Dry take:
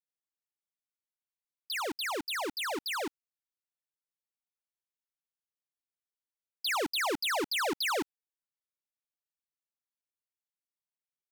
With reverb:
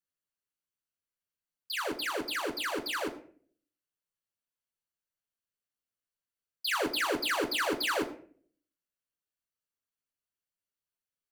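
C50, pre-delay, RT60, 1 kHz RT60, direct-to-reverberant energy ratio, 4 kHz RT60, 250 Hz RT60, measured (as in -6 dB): 13.0 dB, 10 ms, 0.50 s, 0.45 s, 0.5 dB, 0.35 s, 0.65 s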